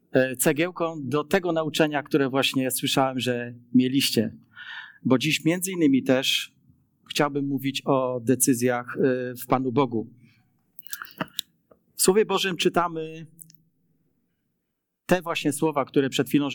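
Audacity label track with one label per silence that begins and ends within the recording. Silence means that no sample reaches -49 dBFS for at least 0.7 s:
13.550000	15.090000	silence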